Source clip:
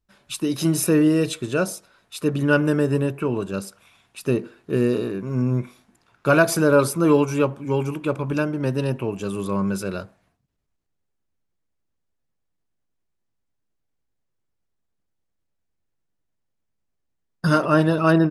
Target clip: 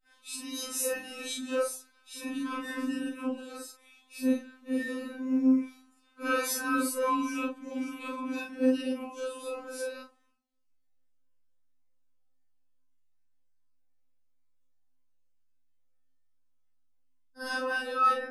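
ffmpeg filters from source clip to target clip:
ffmpeg -i in.wav -af "afftfilt=real='re':imag='-im':win_size=4096:overlap=0.75,afftfilt=real='re*3.46*eq(mod(b,12),0)':imag='im*3.46*eq(mod(b,12),0)':win_size=2048:overlap=0.75,volume=1dB" out.wav

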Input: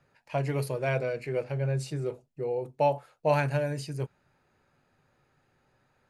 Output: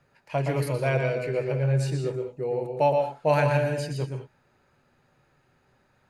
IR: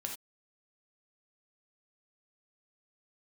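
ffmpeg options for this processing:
-filter_complex "[0:a]asplit=2[link_01][link_02];[1:a]atrim=start_sample=2205,lowpass=7300,adelay=119[link_03];[link_02][link_03]afir=irnorm=-1:irlink=0,volume=-3.5dB[link_04];[link_01][link_04]amix=inputs=2:normalize=0,volume=2.5dB"

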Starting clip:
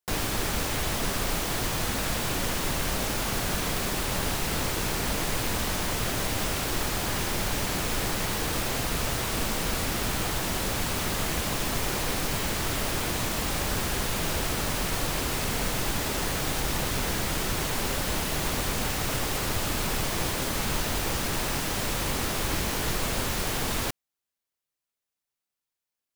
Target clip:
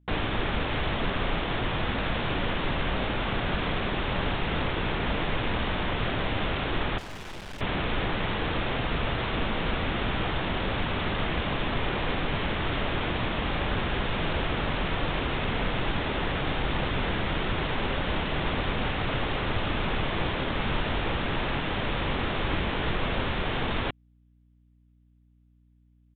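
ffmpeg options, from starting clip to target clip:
ffmpeg -i in.wav -filter_complex "[0:a]aresample=8000,aresample=44100,asettb=1/sr,asplit=3[link_01][link_02][link_03];[link_01]atrim=end=6.984[link_04];[link_02]atrim=start=6.98:end=7.61,asetpts=PTS-STARTPTS,afade=type=in:duration=0.004:curve=qsin,afade=type=out:start_time=0.626:duration=0.004:curve=qsin,aeval=exprs='(tanh(100*val(0)+0.6)-tanh(0.6))/100':channel_layout=same[link_05];[link_03]atrim=start=7.606[link_06];[link_04][link_05]acrossfade=duration=0.004:curve1=hsin:curve2=qsin[link_07];[link_07][link_06]acrossfade=duration=0.004:curve1=qsin:curve2=hsin,aeval=exprs='val(0)+0.000891*(sin(2*PI*60*n/s)+sin(2*PI*2*60*n/s)/2+sin(2*PI*3*60*n/s)/3+sin(2*PI*4*60*n/s)/4+sin(2*PI*5*60*n/s)/5)':channel_layout=same,volume=1.5dB" out.wav

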